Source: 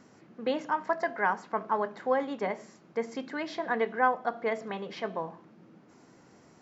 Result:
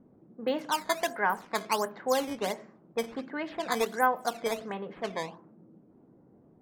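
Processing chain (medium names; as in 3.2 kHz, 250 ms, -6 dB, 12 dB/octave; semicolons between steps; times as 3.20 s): decimation with a swept rate 9×, swing 160% 1.4 Hz; level-controlled noise filter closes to 450 Hz, open at -26 dBFS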